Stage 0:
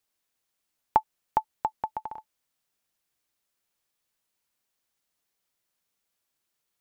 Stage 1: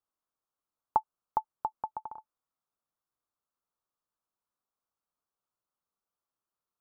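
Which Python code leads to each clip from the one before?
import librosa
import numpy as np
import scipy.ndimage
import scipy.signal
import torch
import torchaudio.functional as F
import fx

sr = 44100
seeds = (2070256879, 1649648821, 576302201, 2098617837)

y = fx.high_shelf_res(x, sr, hz=1600.0, db=-9.0, q=3.0)
y = F.gain(torch.from_numpy(y), -8.0).numpy()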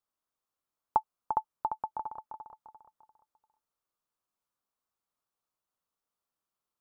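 y = fx.echo_feedback(x, sr, ms=346, feedback_pct=36, wet_db=-7.0)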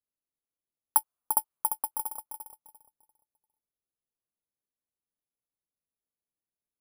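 y = fx.env_lowpass(x, sr, base_hz=480.0, full_db=-29.5)
y = (np.kron(scipy.signal.resample_poly(y, 1, 4), np.eye(4)[0]) * 4)[:len(y)]
y = F.gain(torch.from_numpy(y), -2.5).numpy()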